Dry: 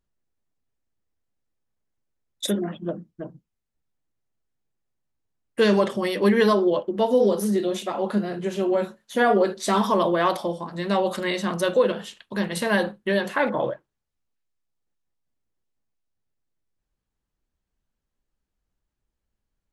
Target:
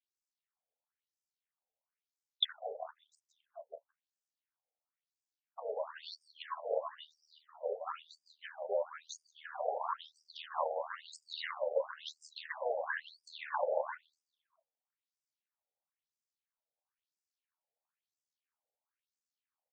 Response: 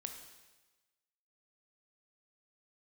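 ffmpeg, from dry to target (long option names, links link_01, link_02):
-filter_complex "[0:a]aecho=1:1:172|344|516|688|860:0.531|0.228|0.0982|0.0422|0.0181,afftdn=noise_reduction=14:noise_floor=-43,acrossover=split=140[link_01][link_02];[link_02]acompressor=threshold=-32dB:ratio=6[link_03];[link_01][link_03]amix=inputs=2:normalize=0,aeval=exprs='val(0)*sin(2*PI*39*n/s)':channel_layout=same,acompressor=threshold=-41dB:ratio=5,afftfilt=real='re*between(b*sr/1024,600*pow(6700/600,0.5+0.5*sin(2*PI*1*pts/sr))/1.41,600*pow(6700/600,0.5+0.5*sin(2*PI*1*pts/sr))*1.41)':imag='im*between(b*sr/1024,600*pow(6700/600,0.5+0.5*sin(2*PI*1*pts/sr))/1.41,600*pow(6700/600,0.5+0.5*sin(2*PI*1*pts/sr))*1.41)':win_size=1024:overlap=0.75,volume=15dB"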